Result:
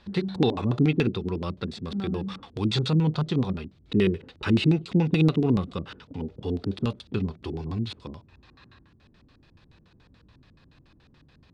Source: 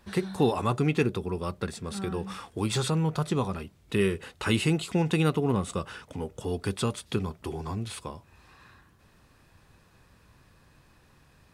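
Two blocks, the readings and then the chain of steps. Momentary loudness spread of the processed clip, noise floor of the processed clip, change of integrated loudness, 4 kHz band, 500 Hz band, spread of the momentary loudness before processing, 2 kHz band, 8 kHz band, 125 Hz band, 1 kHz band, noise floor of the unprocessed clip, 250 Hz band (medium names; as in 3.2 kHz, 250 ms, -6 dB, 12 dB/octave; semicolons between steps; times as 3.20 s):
13 LU, -59 dBFS, +3.0 dB, +1.5 dB, 0.0 dB, 12 LU, -1.5 dB, under -10 dB, +4.0 dB, -3.5 dB, -61 dBFS, +4.5 dB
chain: LFO low-pass square 7 Hz 280–4000 Hz; harmonic-percussive split harmonic +5 dB; trim -2 dB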